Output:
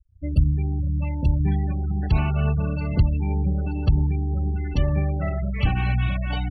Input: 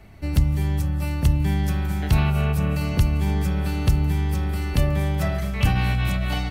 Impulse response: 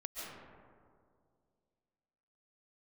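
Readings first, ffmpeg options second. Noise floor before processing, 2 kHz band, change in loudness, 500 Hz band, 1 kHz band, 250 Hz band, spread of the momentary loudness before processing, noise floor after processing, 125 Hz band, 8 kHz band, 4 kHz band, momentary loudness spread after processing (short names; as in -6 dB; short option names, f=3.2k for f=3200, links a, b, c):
-27 dBFS, -4.0 dB, -1.0 dB, -2.0 dB, -3.0 dB, -1.5 dB, 4 LU, -28 dBFS, -0.5 dB, under -20 dB, -6.5 dB, 4 LU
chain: -af "afftfilt=real='re*gte(hypot(re,im),0.0562)':imag='im*gte(hypot(re,im),0.0562)':win_size=1024:overlap=0.75,aphaser=in_gain=1:out_gain=1:delay=3.8:decay=0.25:speed=2:type=triangular,volume=-1.5dB"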